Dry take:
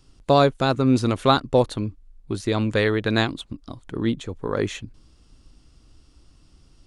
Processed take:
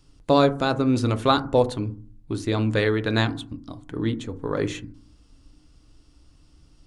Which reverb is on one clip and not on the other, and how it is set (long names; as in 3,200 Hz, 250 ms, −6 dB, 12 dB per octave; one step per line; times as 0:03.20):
feedback delay network reverb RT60 0.44 s, low-frequency decay 1.55×, high-frequency decay 0.3×, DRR 9 dB
level −2 dB